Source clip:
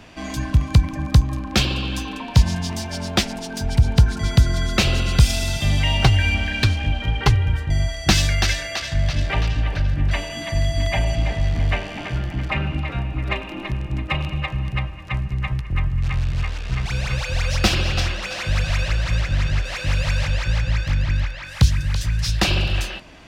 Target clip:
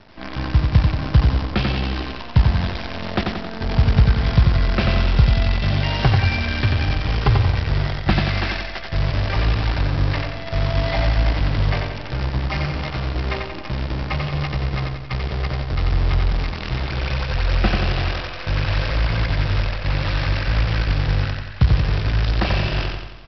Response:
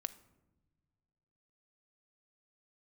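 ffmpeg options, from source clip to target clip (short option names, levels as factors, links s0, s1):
-af "lowpass=2000,aresample=11025,acrusher=bits=5:dc=4:mix=0:aa=0.000001,aresample=44100,aecho=1:1:90|180|270|360|450|540|630:0.631|0.328|0.171|0.0887|0.0461|0.024|0.0125,volume=0.891"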